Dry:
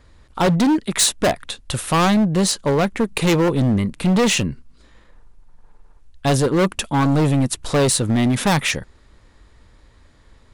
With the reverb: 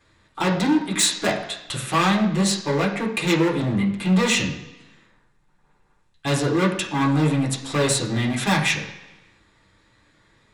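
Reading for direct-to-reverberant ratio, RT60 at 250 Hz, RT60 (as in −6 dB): −4.0 dB, 0.95 s, 1.0 s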